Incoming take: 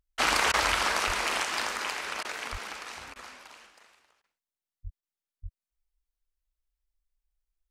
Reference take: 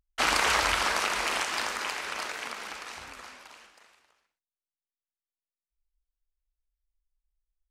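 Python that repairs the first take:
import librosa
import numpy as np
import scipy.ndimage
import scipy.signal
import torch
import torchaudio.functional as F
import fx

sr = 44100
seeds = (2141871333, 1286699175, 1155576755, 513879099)

y = fx.fix_declip(x, sr, threshold_db=-12.5)
y = fx.fix_deplosive(y, sr, at_s=(1.06, 2.51, 4.83, 5.42))
y = fx.fix_interpolate(y, sr, at_s=(0.52, 2.23, 3.14, 4.22, 5.01), length_ms=16.0)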